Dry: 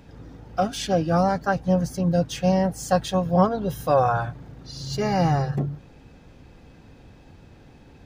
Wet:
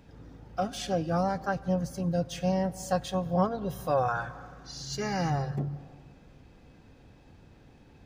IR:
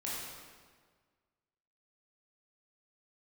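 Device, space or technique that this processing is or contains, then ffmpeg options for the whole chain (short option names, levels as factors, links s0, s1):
ducked reverb: -filter_complex "[0:a]asplit=3[s0][s1][s2];[1:a]atrim=start_sample=2205[s3];[s1][s3]afir=irnorm=-1:irlink=0[s4];[s2]apad=whole_len=355181[s5];[s4][s5]sidechaincompress=threshold=0.0398:ratio=8:attack=11:release=259,volume=0.251[s6];[s0][s6]amix=inputs=2:normalize=0,asettb=1/sr,asplit=3[s7][s8][s9];[s7]atrim=end=4.084[s10];[s8]atrim=start=4.08:end=5.3,asetpts=PTS-STARTPTS,afade=t=in:d=0.004:c=qsin,afade=t=out:st=1.216:d=0.004:c=qsin,equalizer=f=100:t=o:w=0.67:g=-9,equalizer=f=630:t=o:w=0.67:g=-4,equalizer=f=1600:t=o:w=0.67:g=6,equalizer=f=6300:t=o:w=0.67:g=7[s11];[s9]atrim=start=5.296[s12];[s10][s11]acrossfade=d=0.004:c1=hsin:c2=qsin[s13];[s13][s12]acrossfade=d=0.004:c1=qsin:c2=hsin,volume=0.422"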